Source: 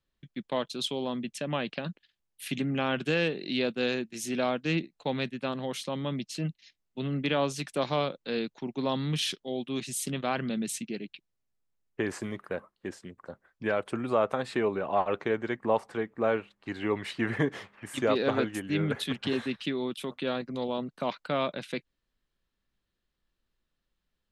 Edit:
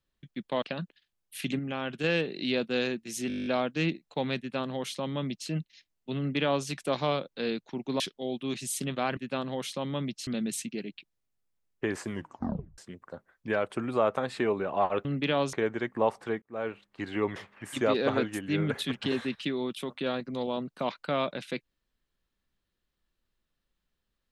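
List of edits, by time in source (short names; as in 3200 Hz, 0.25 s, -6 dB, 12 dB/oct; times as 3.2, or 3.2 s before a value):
0.62–1.69 cut
2.66–3.11 gain -5 dB
4.35 stutter 0.02 s, 10 plays
5.28–6.38 copy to 10.43
7.07–7.55 copy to 15.21
8.89–9.26 cut
12.27 tape stop 0.67 s
16.1–16.54 fade in
17.04–17.57 cut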